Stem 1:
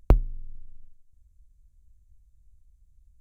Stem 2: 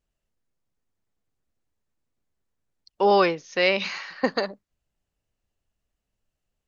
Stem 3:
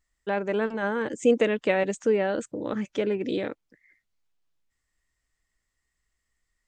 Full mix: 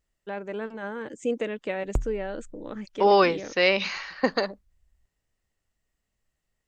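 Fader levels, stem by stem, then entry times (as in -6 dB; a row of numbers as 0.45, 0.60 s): -8.0, 0.0, -7.0 dB; 1.85, 0.00, 0.00 s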